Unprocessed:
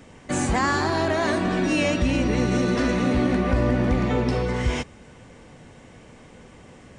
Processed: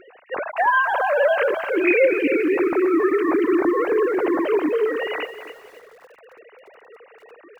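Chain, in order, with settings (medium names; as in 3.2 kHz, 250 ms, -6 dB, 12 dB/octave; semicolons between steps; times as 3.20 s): formants replaced by sine waves; speed mistake 48 kHz file played as 44.1 kHz; bit-crushed delay 271 ms, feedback 35%, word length 8-bit, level -10.5 dB; trim +2 dB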